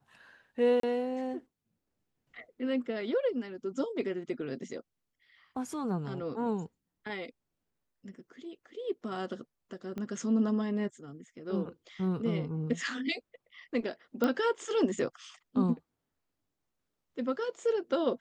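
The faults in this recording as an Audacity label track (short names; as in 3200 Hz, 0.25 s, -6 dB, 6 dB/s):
0.800000	0.830000	gap 33 ms
9.980000	9.980000	pop -26 dBFS
14.240000	14.240000	pop -16 dBFS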